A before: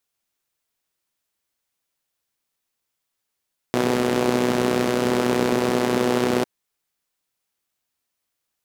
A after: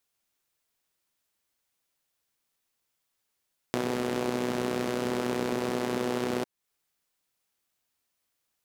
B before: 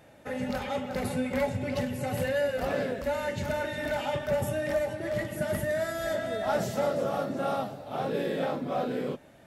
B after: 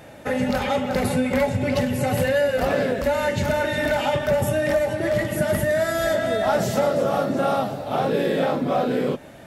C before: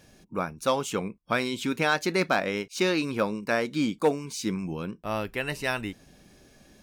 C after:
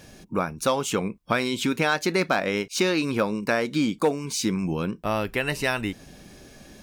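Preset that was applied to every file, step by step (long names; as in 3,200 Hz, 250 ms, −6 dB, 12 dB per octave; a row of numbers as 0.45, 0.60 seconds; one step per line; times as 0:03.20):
downward compressor 2 to 1, threshold −32 dBFS
normalise the peak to −9 dBFS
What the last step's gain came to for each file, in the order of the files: 0.0, +11.5, +8.0 decibels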